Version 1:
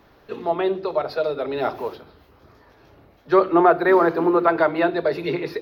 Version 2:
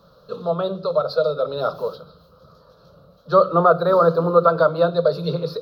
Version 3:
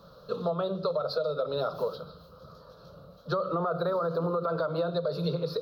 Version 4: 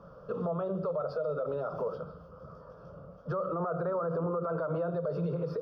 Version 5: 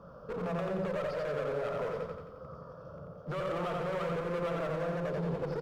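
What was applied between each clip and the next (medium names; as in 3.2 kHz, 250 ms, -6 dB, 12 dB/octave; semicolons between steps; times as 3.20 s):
FFT filter 110 Hz 0 dB, 170 Hz +14 dB, 250 Hz -5 dB, 370 Hz -9 dB, 520 Hz +13 dB, 810 Hz -7 dB, 1.3 kHz +10 dB, 2 kHz -24 dB, 4.1 kHz +10 dB, 6 kHz +2 dB; trim -2.5 dB
peak limiter -13.5 dBFS, peak gain reduction 10.5 dB; compression, threshold -26 dBFS, peak gain reduction 8.5 dB
peak limiter -26.5 dBFS, peak gain reduction 9 dB; boxcar filter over 11 samples; trim +2 dB
one-sided clip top -38.5 dBFS, bottom -30.5 dBFS; feedback delay 88 ms, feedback 53%, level -3.5 dB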